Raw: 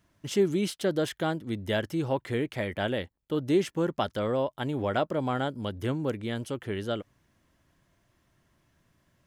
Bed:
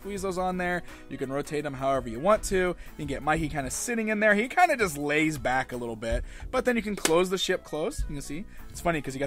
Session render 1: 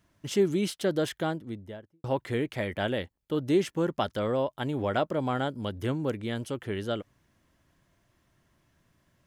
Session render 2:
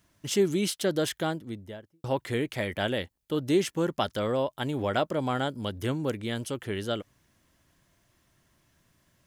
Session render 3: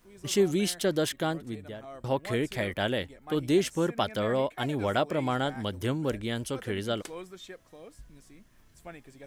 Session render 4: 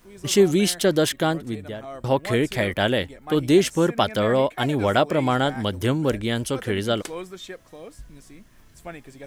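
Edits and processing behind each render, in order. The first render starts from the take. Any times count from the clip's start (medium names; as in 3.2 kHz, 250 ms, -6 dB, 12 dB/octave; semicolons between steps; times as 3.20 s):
1.09–2.04 s: studio fade out
treble shelf 3.3 kHz +7.5 dB
add bed -18.5 dB
trim +7.5 dB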